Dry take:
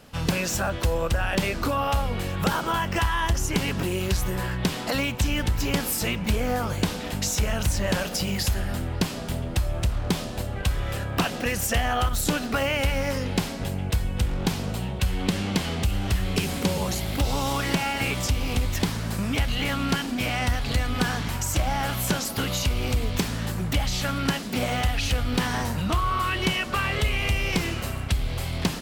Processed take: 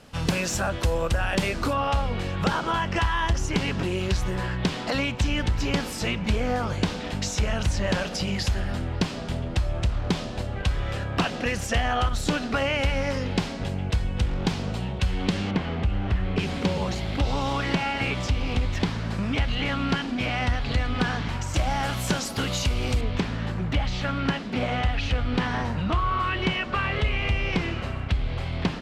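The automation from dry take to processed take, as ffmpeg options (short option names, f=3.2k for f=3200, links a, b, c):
-af "asetnsamples=n=441:p=0,asendcmd='1.73 lowpass f 5600;15.51 lowpass f 2200;16.39 lowpass f 4100;21.54 lowpass f 8000;23.01 lowpass f 3200',lowpass=10k"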